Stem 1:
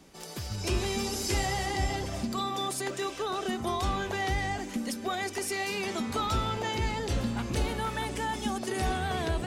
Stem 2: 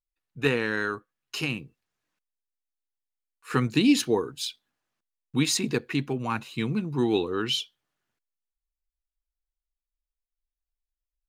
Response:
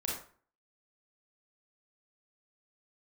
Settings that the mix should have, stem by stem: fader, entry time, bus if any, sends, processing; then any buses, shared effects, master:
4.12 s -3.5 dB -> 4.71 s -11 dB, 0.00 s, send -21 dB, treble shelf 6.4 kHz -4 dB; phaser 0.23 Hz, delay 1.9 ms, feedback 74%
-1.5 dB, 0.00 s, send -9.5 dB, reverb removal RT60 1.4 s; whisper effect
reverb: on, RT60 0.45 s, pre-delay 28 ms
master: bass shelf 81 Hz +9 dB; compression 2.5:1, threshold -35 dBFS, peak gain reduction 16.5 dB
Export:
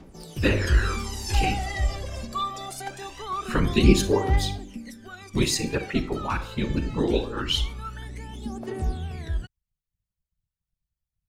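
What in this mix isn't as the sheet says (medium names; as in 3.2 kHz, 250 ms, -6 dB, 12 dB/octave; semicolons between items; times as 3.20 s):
stem 1: send off; master: missing compression 2.5:1, threshold -35 dBFS, peak gain reduction 16.5 dB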